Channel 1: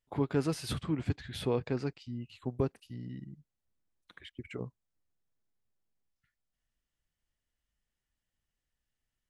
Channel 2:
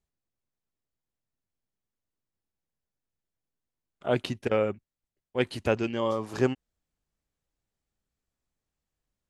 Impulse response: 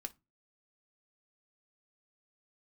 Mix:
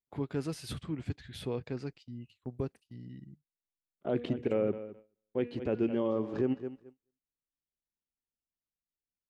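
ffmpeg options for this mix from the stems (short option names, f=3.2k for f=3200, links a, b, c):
-filter_complex "[0:a]volume=-4dB[a];[1:a]lowpass=3.1k,equalizer=f=300:t=o:w=2.6:g=12,bandreject=f=240.5:t=h:w=4,bandreject=f=481:t=h:w=4,bandreject=f=721.5:t=h:w=4,bandreject=f=962:t=h:w=4,bandreject=f=1.2025k:t=h:w=4,bandreject=f=1.443k:t=h:w=4,bandreject=f=1.6835k:t=h:w=4,bandreject=f=1.924k:t=h:w=4,bandreject=f=2.1645k:t=h:w=4,bandreject=f=2.405k:t=h:w=4,bandreject=f=2.6455k:t=h:w=4,bandreject=f=2.886k:t=h:w=4,bandreject=f=3.1265k:t=h:w=4,bandreject=f=3.367k:t=h:w=4,bandreject=f=3.6075k:t=h:w=4,volume=-8.5dB,asplit=2[b][c];[c]volume=-16.5dB,aecho=0:1:214|428|642:1|0.18|0.0324[d];[a][b][d]amix=inputs=3:normalize=0,equalizer=f=1k:t=o:w=1.5:g=-3.5,agate=range=-17dB:threshold=-52dB:ratio=16:detection=peak,alimiter=limit=-20.5dB:level=0:latency=1:release=51"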